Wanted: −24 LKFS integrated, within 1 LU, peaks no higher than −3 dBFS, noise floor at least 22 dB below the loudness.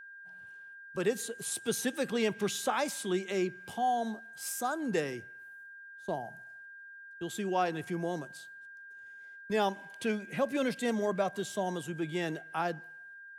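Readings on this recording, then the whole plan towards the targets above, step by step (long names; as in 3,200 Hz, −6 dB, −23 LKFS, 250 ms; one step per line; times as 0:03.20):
interfering tone 1,600 Hz; level of the tone −47 dBFS; integrated loudness −33.5 LKFS; sample peak −17.0 dBFS; target loudness −24.0 LKFS
→ notch filter 1,600 Hz, Q 30
level +9.5 dB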